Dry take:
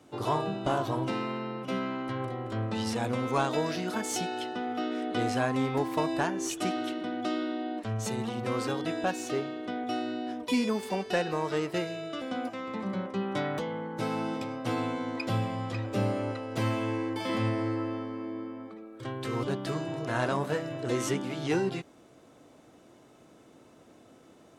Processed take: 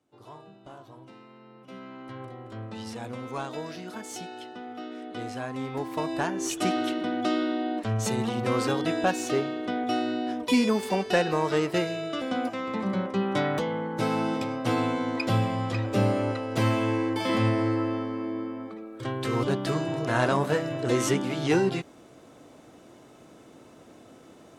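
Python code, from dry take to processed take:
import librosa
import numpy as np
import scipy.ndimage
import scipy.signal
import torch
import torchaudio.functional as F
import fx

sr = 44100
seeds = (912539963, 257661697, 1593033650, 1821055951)

y = fx.gain(x, sr, db=fx.line((1.29, -18.0), (2.14, -6.5), (5.43, -6.5), (6.73, 5.0)))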